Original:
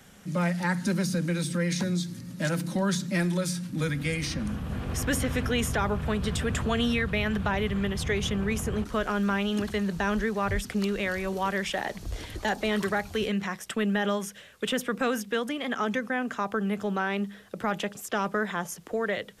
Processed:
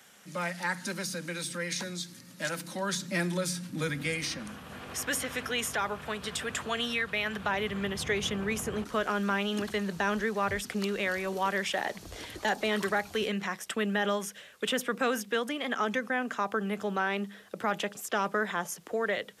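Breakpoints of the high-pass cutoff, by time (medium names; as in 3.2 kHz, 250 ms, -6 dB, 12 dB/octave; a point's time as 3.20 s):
high-pass 6 dB/octave
2.76 s 820 Hz
3.25 s 280 Hz
4.02 s 280 Hz
4.56 s 850 Hz
7.15 s 850 Hz
7.88 s 300 Hz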